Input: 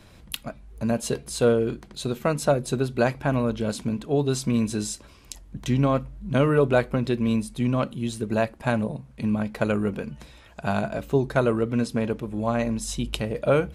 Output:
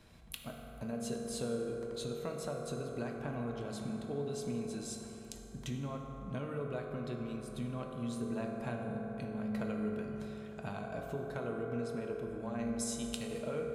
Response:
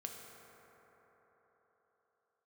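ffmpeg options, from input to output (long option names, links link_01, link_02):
-filter_complex "[0:a]asettb=1/sr,asplit=3[link_01][link_02][link_03];[link_01]atrim=end=12.794[link_04];[link_02]atrim=start=12.79:end=13.42,asetpts=PTS-STARTPTS,afade=type=in:duration=0.004:curve=qsin,afade=type=out:start_time=0.626:duration=0.004:curve=qsin,equalizer=frequency=8100:width_type=o:width=2.5:gain=15[link_05];[link_03]atrim=start=13.416[link_06];[link_04][link_05]acrossfade=duration=0.004:curve1=hsin:curve2=qsin[link_07];[link_07][link_06]acrossfade=duration=0.004:curve1=qsin:curve2=hsin,acompressor=threshold=-29dB:ratio=6[link_08];[1:a]atrim=start_sample=2205[link_09];[link_08][link_09]afir=irnorm=-1:irlink=0,volume=-5dB"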